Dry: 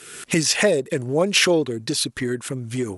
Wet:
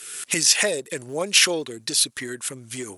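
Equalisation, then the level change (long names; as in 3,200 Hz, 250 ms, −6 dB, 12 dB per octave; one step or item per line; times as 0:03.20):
spectral tilt +3 dB per octave
−4.0 dB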